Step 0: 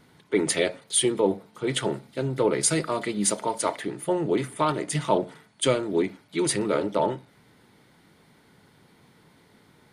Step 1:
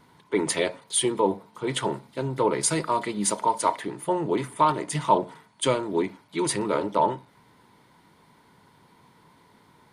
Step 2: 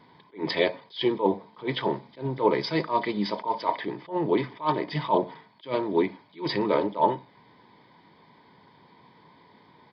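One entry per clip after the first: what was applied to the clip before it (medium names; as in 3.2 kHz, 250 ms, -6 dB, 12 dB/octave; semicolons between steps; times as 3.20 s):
peaking EQ 980 Hz +13 dB 0.27 oct; trim -1.5 dB
resampled via 11.025 kHz; comb of notches 1.4 kHz; attacks held to a fixed rise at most 230 dB/s; trim +2.5 dB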